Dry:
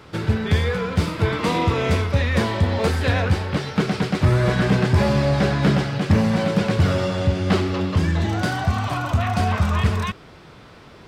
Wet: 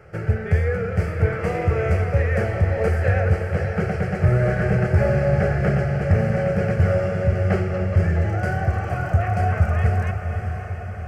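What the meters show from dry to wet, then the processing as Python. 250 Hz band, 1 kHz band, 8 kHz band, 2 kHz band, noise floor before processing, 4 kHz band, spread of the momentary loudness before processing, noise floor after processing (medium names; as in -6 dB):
-5.0 dB, -3.0 dB, under -10 dB, -1.5 dB, -45 dBFS, under -15 dB, 5 LU, -30 dBFS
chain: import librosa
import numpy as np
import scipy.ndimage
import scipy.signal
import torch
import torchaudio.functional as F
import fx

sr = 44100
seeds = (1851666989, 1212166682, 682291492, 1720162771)

y = fx.high_shelf(x, sr, hz=2500.0, db=-11.5)
y = fx.fixed_phaser(y, sr, hz=1000.0, stages=6)
y = fx.echo_diffused(y, sr, ms=552, feedback_pct=60, wet_db=-7.5)
y = y * librosa.db_to_amplitude(2.0)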